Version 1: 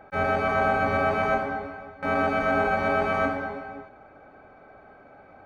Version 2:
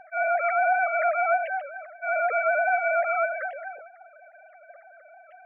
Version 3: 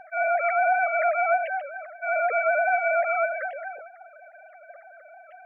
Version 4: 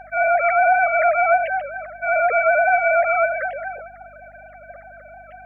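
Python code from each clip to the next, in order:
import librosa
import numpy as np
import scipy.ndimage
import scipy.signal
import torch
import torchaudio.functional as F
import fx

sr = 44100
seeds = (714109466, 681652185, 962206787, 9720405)

y1 = fx.sine_speech(x, sr)
y2 = fx.dynamic_eq(y1, sr, hz=1100.0, q=1.8, threshold_db=-41.0, ratio=4.0, max_db=-6)
y2 = y2 * 10.0 ** (2.5 / 20.0)
y3 = fx.add_hum(y2, sr, base_hz=50, snr_db=33)
y3 = y3 * 10.0 ** (6.0 / 20.0)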